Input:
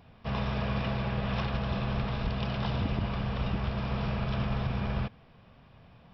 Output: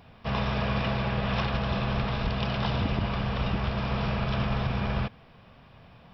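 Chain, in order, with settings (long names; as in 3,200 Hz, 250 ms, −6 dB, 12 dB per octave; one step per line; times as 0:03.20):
low-shelf EQ 460 Hz −3.5 dB
level +5.5 dB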